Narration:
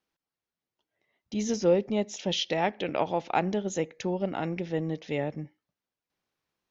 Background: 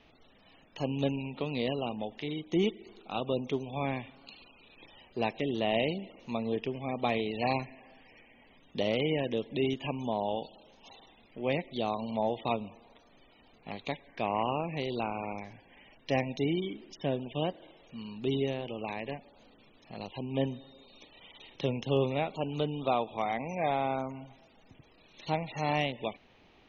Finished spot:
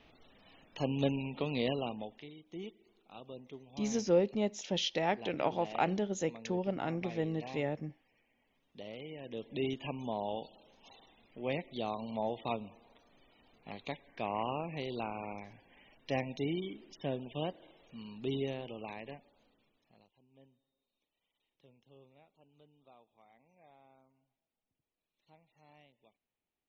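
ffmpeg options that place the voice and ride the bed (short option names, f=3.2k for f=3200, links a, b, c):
-filter_complex "[0:a]adelay=2450,volume=-4.5dB[a];[1:a]volume=10.5dB,afade=t=out:st=1.7:d=0.62:silence=0.16788,afade=t=in:st=9.19:d=0.4:silence=0.266073,afade=t=out:st=18.56:d=1.55:silence=0.0421697[b];[a][b]amix=inputs=2:normalize=0"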